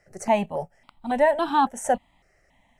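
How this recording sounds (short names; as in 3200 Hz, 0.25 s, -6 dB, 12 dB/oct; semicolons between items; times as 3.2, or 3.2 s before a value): notches that jump at a steady rate 3.6 Hz 940–1900 Hz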